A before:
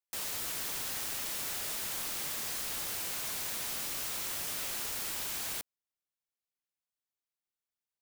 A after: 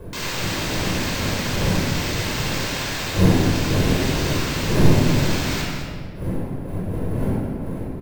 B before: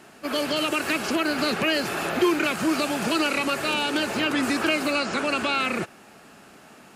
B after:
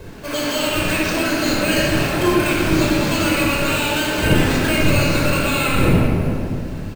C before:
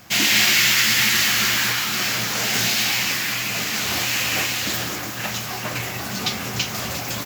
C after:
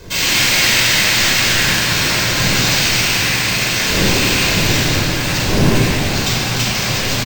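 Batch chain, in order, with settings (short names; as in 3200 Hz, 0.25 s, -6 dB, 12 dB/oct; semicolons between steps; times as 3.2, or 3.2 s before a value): wind noise 310 Hz -28 dBFS; high shelf 3700 Hz +7 dB; notch 1200 Hz, Q 26; in parallel at -2.5 dB: vocal rider within 4 dB; on the sum: sample-rate reducer 11000 Hz, jitter 0%; soft clip -4.5 dBFS; on a send: echo 0.211 s -10 dB; on the sum: shoebox room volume 2800 m³, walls mixed, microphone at 5.2 m; gain -9 dB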